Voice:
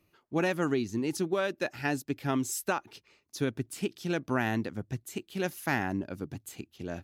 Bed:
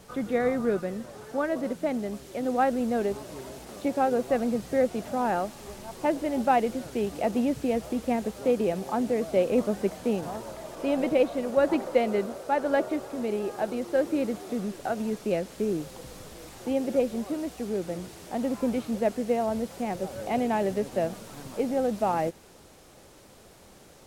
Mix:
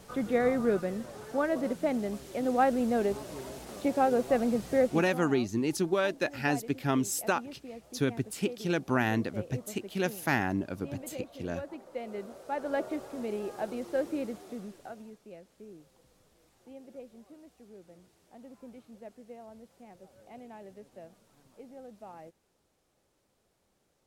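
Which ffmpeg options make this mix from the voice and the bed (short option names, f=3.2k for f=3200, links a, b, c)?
-filter_complex "[0:a]adelay=4600,volume=1.5dB[a];[1:a]volume=11.5dB,afade=t=out:st=4.78:d=0.47:silence=0.141254,afade=t=in:st=11.85:d=1.08:silence=0.237137,afade=t=out:st=13.99:d=1.19:silence=0.158489[b];[a][b]amix=inputs=2:normalize=0"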